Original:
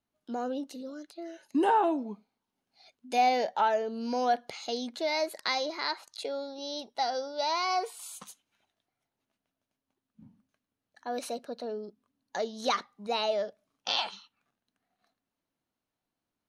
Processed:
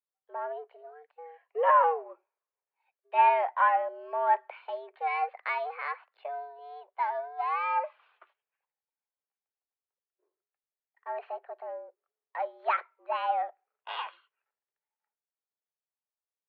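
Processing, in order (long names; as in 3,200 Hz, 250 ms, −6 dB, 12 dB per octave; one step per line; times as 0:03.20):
gain on one half-wave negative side −3 dB
single-sideband voice off tune +150 Hz 330–2,400 Hz
multiband upward and downward expander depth 40%
level +1.5 dB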